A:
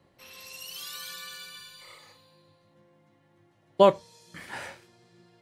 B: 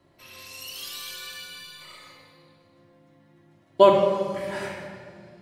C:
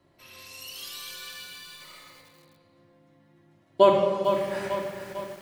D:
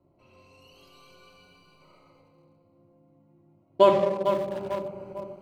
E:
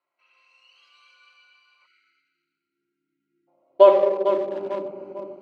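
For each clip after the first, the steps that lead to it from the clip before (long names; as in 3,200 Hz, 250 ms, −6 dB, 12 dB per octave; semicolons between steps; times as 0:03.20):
rectangular room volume 4,000 cubic metres, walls mixed, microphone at 2.9 metres
feedback echo at a low word length 449 ms, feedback 55%, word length 7 bits, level −7.5 dB; level −2.5 dB
adaptive Wiener filter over 25 samples
high-frequency loss of the air 100 metres; time-frequency box erased 0:01.86–0:03.48, 420–1,300 Hz; high-pass filter sweep 1,700 Hz → 300 Hz, 0:01.74–0:04.72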